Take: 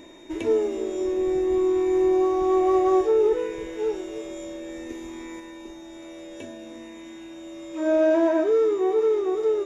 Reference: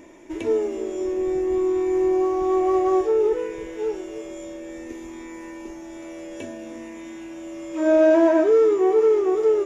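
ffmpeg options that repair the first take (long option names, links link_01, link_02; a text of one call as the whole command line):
ffmpeg -i in.wav -af "bandreject=frequency=3700:width=30,asetnsamples=nb_out_samples=441:pad=0,asendcmd='5.4 volume volume 4dB',volume=0dB" out.wav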